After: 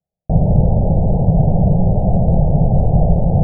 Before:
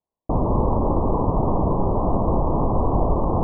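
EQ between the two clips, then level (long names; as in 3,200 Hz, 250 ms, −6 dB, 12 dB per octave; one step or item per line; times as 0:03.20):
Butterworth low-pass 800 Hz 72 dB per octave
low shelf with overshoot 220 Hz +10.5 dB, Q 3
parametric band 600 Hz +9.5 dB 1.4 octaves
−4.0 dB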